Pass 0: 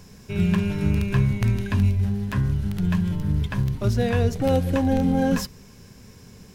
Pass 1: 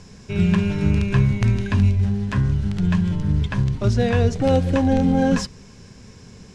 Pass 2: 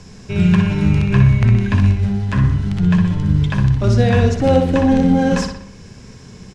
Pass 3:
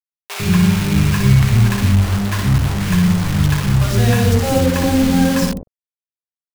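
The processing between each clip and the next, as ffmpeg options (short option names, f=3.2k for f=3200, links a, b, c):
-af "lowpass=f=8.2k:w=0.5412,lowpass=f=8.2k:w=1.3066,volume=3dB"
-filter_complex "[0:a]acrossover=split=450|3300[a][b][c];[c]alimiter=level_in=2dB:limit=-24dB:level=0:latency=1:release=494,volume=-2dB[d];[a][b][d]amix=inputs=3:normalize=0,asplit=2[e][f];[f]adelay=61,lowpass=f=4.4k:p=1,volume=-5dB,asplit=2[g][h];[h]adelay=61,lowpass=f=4.4k:p=1,volume=0.53,asplit=2[i][j];[j]adelay=61,lowpass=f=4.4k:p=1,volume=0.53,asplit=2[k][l];[l]adelay=61,lowpass=f=4.4k:p=1,volume=0.53,asplit=2[m][n];[n]adelay=61,lowpass=f=4.4k:p=1,volume=0.53,asplit=2[o][p];[p]adelay=61,lowpass=f=4.4k:p=1,volume=0.53,asplit=2[q][r];[r]adelay=61,lowpass=f=4.4k:p=1,volume=0.53[s];[e][g][i][k][m][o][q][s]amix=inputs=8:normalize=0,volume=3.5dB"
-filter_complex "[0:a]acrusher=bits=3:mix=0:aa=0.000001,acrossover=split=570[a][b];[a]adelay=100[c];[c][b]amix=inputs=2:normalize=0"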